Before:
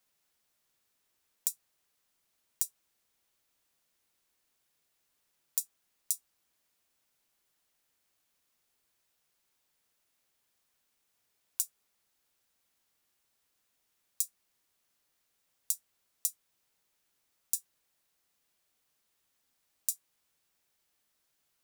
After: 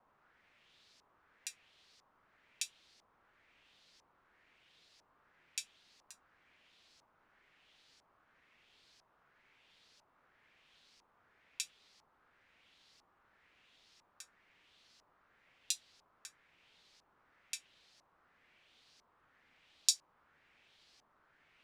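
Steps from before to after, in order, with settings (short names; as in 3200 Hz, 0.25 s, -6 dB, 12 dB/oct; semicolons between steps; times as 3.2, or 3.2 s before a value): LFO low-pass saw up 1 Hz 930–5300 Hz; vibrato 3 Hz 43 cents; gain +11.5 dB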